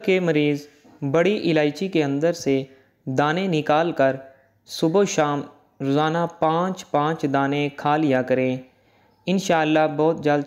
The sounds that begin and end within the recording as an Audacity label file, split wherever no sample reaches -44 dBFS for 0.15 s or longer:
3.060000	4.350000	sound
4.670000	5.570000	sound
5.800000	8.680000	sound